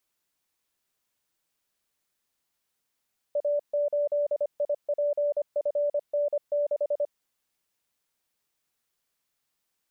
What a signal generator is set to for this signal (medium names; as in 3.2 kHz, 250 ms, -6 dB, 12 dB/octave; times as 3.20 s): Morse "A8IPFN6" 25 wpm 583 Hz -22.5 dBFS